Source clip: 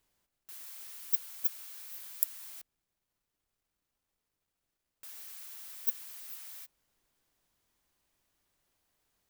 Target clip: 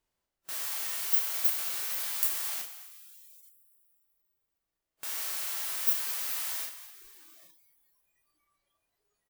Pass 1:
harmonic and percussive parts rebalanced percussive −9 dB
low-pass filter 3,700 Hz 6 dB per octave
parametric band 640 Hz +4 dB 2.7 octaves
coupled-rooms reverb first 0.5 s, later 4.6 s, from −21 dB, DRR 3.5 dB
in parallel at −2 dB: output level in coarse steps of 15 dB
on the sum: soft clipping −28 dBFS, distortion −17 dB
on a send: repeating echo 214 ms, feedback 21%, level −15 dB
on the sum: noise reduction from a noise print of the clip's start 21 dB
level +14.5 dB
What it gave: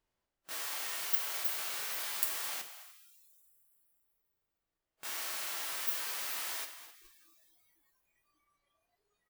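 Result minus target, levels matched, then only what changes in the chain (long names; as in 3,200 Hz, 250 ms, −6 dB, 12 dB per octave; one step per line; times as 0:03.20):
4,000 Hz band +4.0 dB
change: low-pass filter 11,000 Hz 6 dB per octave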